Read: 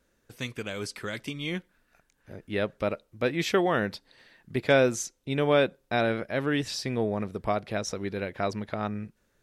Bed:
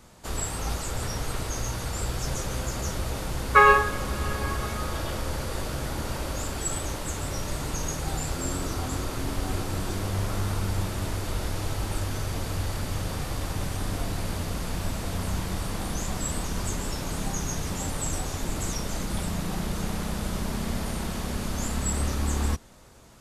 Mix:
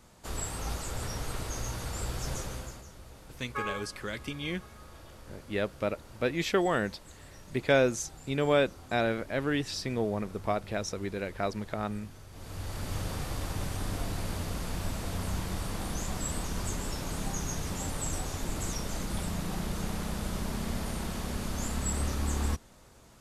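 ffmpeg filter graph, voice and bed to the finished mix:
-filter_complex "[0:a]adelay=3000,volume=-2.5dB[a];[1:a]volume=10.5dB,afade=t=out:st=2.36:d=0.49:silence=0.188365,afade=t=in:st=12.31:d=0.65:silence=0.16788[b];[a][b]amix=inputs=2:normalize=0"

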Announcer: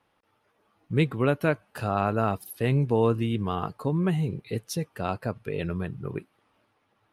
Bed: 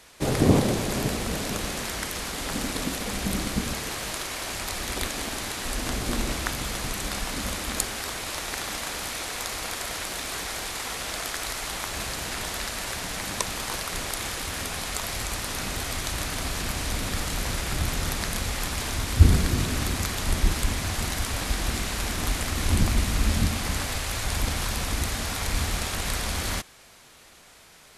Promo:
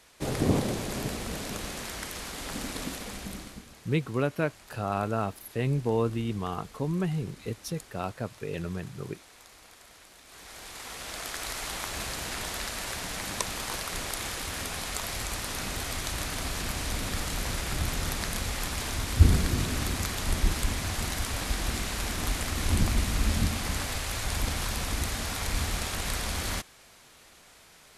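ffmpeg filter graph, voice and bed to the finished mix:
-filter_complex "[0:a]adelay=2950,volume=-4dB[a];[1:a]volume=12dB,afade=t=out:st=2.86:d=0.8:silence=0.177828,afade=t=in:st=10.25:d=1.36:silence=0.125893[b];[a][b]amix=inputs=2:normalize=0"

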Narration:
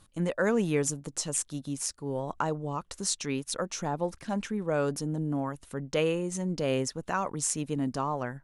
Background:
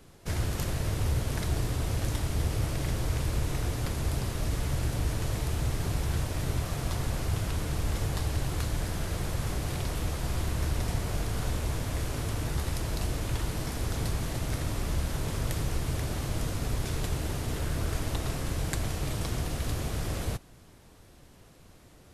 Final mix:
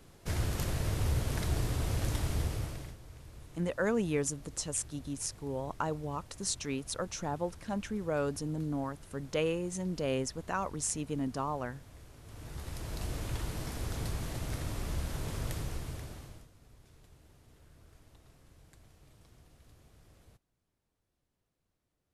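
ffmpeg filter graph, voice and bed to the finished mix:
-filter_complex "[0:a]adelay=3400,volume=-4dB[a];[1:a]volume=13.5dB,afade=t=out:st=2.31:d=0.66:silence=0.112202,afade=t=in:st=12.22:d=0.95:silence=0.158489,afade=t=out:st=15.48:d=1:silence=0.0707946[b];[a][b]amix=inputs=2:normalize=0"

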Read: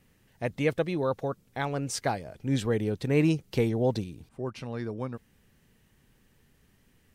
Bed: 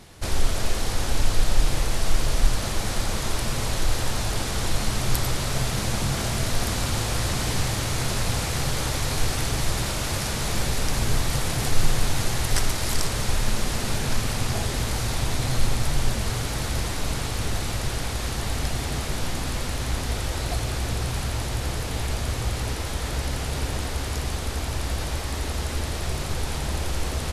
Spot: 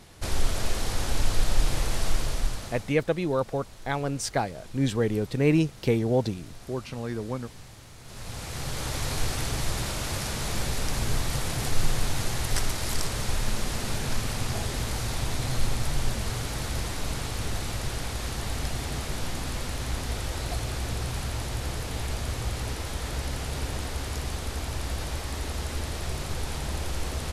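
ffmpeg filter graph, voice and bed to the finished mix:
-filter_complex "[0:a]adelay=2300,volume=2dB[a];[1:a]volume=15dB,afade=t=out:st=2.03:d=0.92:silence=0.112202,afade=t=in:st=8.03:d=1.01:silence=0.125893[b];[a][b]amix=inputs=2:normalize=0"

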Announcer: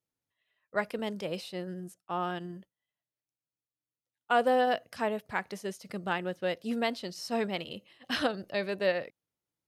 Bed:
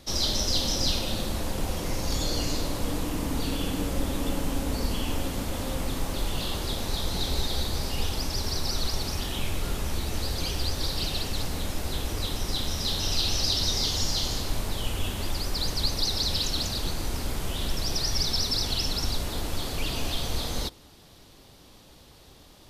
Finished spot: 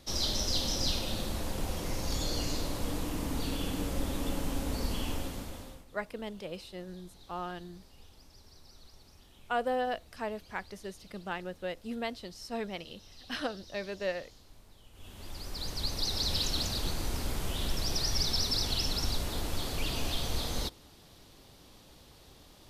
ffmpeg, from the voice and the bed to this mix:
-filter_complex "[0:a]adelay=5200,volume=-5.5dB[a];[1:a]volume=19dB,afade=t=out:st=5.06:d=0.79:silence=0.0749894,afade=t=in:st=14.92:d=1.47:silence=0.0630957[b];[a][b]amix=inputs=2:normalize=0"

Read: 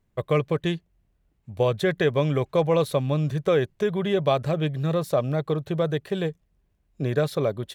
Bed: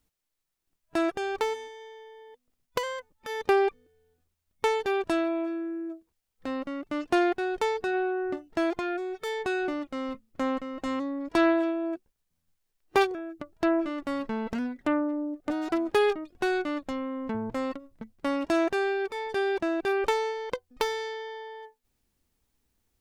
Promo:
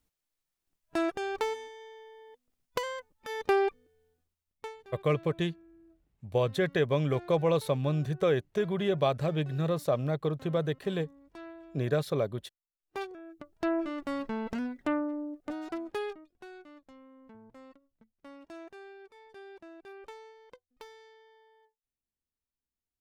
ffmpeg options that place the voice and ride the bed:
-filter_complex "[0:a]adelay=4750,volume=-5dB[a];[1:a]volume=18dB,afade=t=out:st=4.04:d=0.73:silence=0.0891251,afade=t=in:st=12.78:d=1.17:silence=0.0891251,afade=t=out:st=14.78:d=1.67:silence=0.11885[b];[a][b]amix=inputs=2:normalize=0"

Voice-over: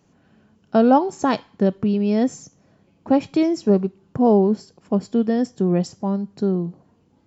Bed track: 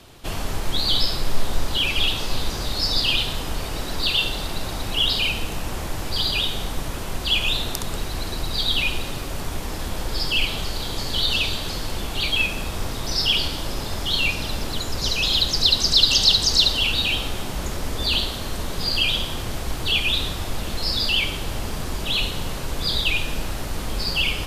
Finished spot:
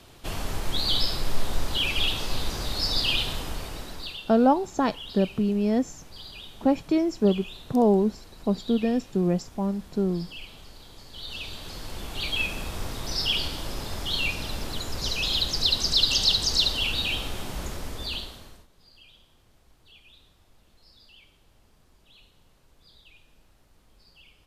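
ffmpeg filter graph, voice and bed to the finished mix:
-filter_complex "[0:a]adelay=3550,volume=-4.5dB[a];[1:a]volume=10.5dB,afade=t=out:st=3.32:d=0.9:silence=0.158489,afade=t=in:st=11.11:d=1.38:silence=0.188365,afade=t=out:st=17.6:d=1.07:silence=0.0421697[b];[a][b]amix=inputs=2:normalize=0"

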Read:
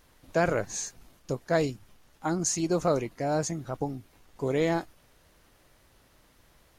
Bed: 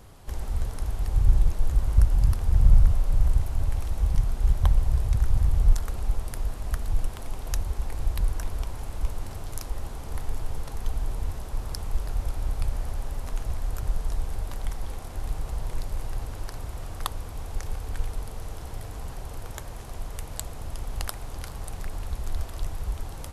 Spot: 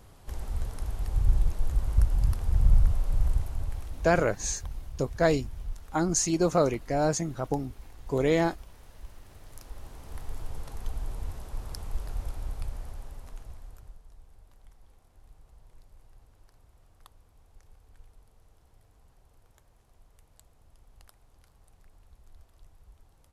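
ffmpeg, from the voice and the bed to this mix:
-filter_complex "[0:a]adelay=3700,volume=2dB[a];[1:a]volume=8dB,afade=t=out:st=3.31:d=0.95:silence=0.211349,afade=t=in:st=9.25:d=1.33:silence=0.251189,afade=t=out:st=12.2:d=1.8:silence=0.112202[b];[a][b]amix=inputs=2:normalize=0"

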